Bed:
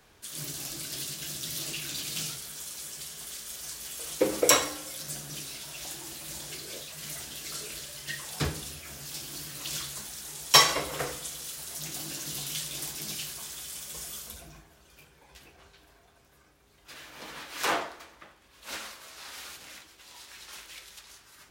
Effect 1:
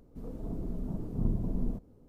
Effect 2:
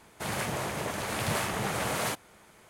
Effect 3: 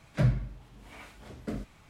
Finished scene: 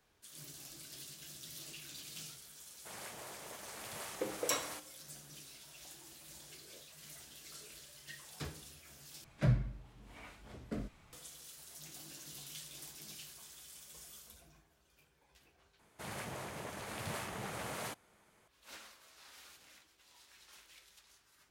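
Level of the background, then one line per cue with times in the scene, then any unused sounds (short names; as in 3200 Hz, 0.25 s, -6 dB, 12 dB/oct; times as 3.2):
bed -14 dB
2.65 add 2 -16.5 dB + tone controls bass -9 dB, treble +4 dB
9.24 replace with 3 -5 dB
15.79 replace with 2 -11.5 dB
not used: 1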